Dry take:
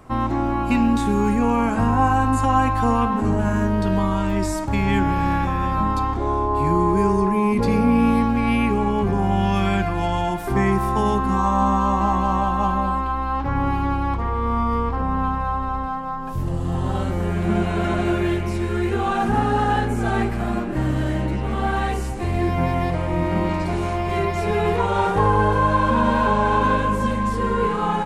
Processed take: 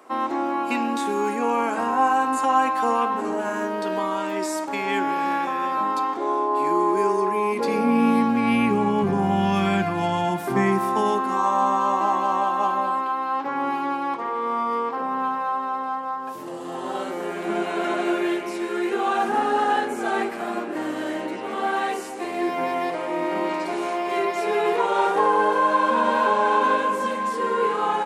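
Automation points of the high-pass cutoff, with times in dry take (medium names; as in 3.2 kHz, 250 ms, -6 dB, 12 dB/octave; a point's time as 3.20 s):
high-pass 24 dB/octave
7.57 s 310 Hz
8.63 s 130 Hz
10.32 s 130 Hz
11.31 s 300 Hz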